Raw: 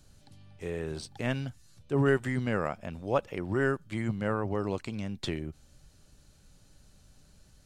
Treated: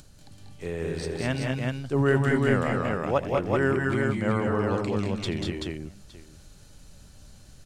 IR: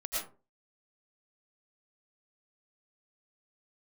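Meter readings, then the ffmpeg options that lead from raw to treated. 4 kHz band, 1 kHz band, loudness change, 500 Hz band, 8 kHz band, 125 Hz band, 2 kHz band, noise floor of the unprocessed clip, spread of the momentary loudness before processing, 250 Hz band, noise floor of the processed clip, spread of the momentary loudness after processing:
+6.0 dB, +6.0 dB, +5.5 dB, +5.5 dB, +6.0 dB, +6.0 dB, +6.0 dB, -61 dBFS, 11 LU, +6.0 dB, -51 dBFS, 11 LU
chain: -filter_complex "[0:a]acompressor=mode=upward:threshold=0.00355:ratio=2.5,asplit=2[s0][s1];[s1]aecho=0:1:81|189|212|382|863:0.119|0.596|0.531|0.708|0.112[s2];[s0][s2]amix=inputs=2:normalize=0,volume=1.33"

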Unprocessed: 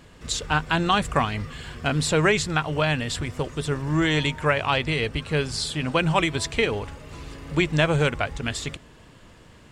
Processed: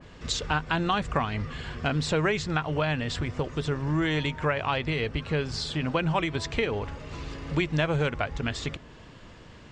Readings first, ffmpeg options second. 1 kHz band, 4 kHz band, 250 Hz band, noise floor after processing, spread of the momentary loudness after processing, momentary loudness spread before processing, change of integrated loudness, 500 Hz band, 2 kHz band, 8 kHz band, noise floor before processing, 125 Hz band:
-4.0 dB, -5.5 dB, -3.5 dB, -49 dBFS, 8 LU, 11 LU, -4.5 dB, -4.0 dB, -5.0 dB, -8.5 dB, -50 dBFS, -3.0 dB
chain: -af "lowpass=f=6600:w=0.5412,lowpass=f=6600:w=1.3066,acompressor=threshold=0.0398:ratio=2,adynamicequalizer=threshold=0.00562:dfrequency=2300:dqfactor=0.7:tfrequency=2300:tqfactor=0.7:attack=5:release=100:ratio=0.375:range=2:mode=cutabove:tftype=highshelf,volume=1.19"

